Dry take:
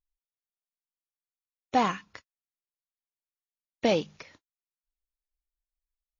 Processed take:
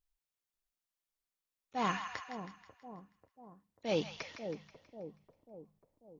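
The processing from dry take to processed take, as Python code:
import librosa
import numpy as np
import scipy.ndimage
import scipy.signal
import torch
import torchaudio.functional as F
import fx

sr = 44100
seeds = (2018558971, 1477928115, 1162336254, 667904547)

y = fx.auto_swell(x, sr, attack_ms=293.0)
y = fx.echo_split(y, sr, split_hz=820.0, low_ms=541, high_ms=161, feedback_pct=52, wet_db=-8.0)
y = y * 10.0 ** (2.0 / 20.0)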